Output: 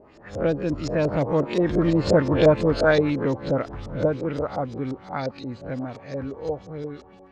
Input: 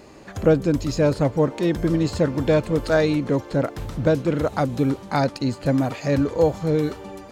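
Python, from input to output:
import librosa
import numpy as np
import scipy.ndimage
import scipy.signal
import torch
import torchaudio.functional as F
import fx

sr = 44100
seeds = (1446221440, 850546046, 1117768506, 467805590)

y = fx.spec_swells(x, sr, rise_s=0.37)
y = fx.doppler_pass(y, sr, speed_mps=13, closest_m=12.0, pass_at_s=2.3)
y = fx.filter_lfo_lowpass(y, sr, shape='saw_up', hz=5.7, low_hz=510.0, high_hz=6800.0, q=1.9)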